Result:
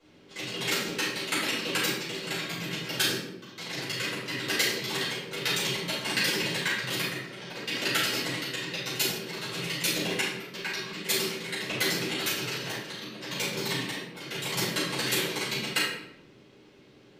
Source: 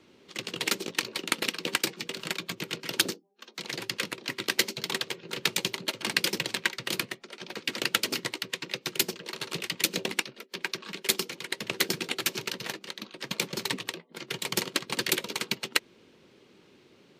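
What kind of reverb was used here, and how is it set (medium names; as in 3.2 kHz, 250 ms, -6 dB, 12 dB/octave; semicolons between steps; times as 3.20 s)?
simulated room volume 220 m³, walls mixed, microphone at 5.3 m; trim -12 dB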